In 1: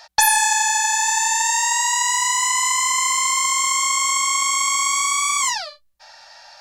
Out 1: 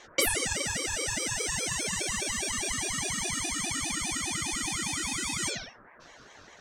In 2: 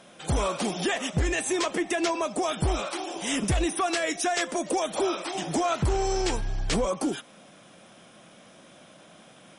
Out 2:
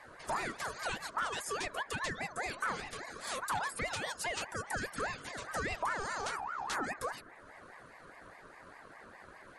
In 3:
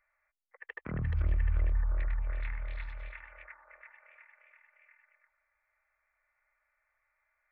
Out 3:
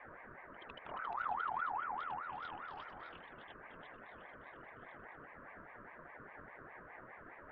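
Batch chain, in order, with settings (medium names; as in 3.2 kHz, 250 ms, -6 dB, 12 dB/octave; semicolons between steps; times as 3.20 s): reverb removal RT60 0.62 s; band noise 140–820 Hz -44 dBFS; ring modulator with a swept carrier 1.1 kHz, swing 30%, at 4.9 Hz; trim -7.5 dB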